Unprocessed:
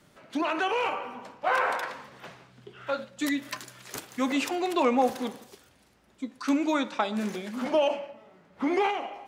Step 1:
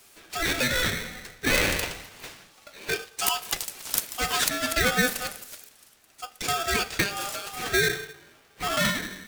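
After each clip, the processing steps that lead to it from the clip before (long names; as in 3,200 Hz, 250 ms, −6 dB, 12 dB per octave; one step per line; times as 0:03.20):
RIAA equalisation recording
ring modulator with a square carrier 1,000 Hz
level +2 dB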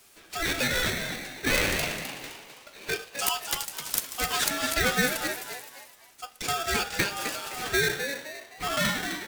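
echo with shifted repeats 258 ms, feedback 36%, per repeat +120 Hz, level −8 dB
level −2 dB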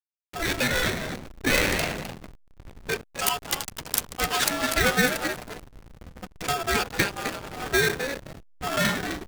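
feedback delay with all-pass diffusion 1,189 ms, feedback 40%, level −14.5 dB
slack as between gear wheels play −25.5 dBFS
level +4 dB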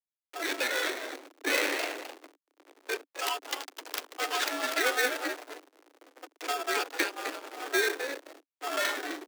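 running median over 5 samples
Butterworth high-pass 280 Hz 96 dB per octave
level −4.5 dB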